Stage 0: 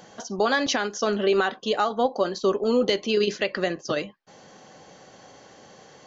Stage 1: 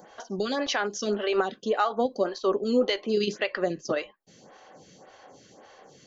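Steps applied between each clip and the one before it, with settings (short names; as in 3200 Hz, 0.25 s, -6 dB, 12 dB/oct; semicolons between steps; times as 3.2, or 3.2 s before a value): photocell phaser 1.8 Hz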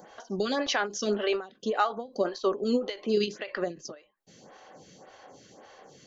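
ending taper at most 170 dB/s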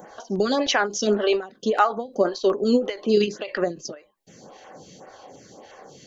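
LFO notch saw down 2.8 Hz 990–4900 Hz; gain +7 dB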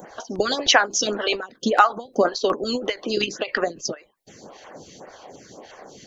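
harmonic-percussive split harmonic -15 dB; gain +7 dB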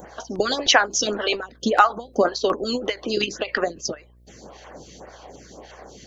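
buzz 60 Hz, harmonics 11, -53 dBFS -9 dB/oct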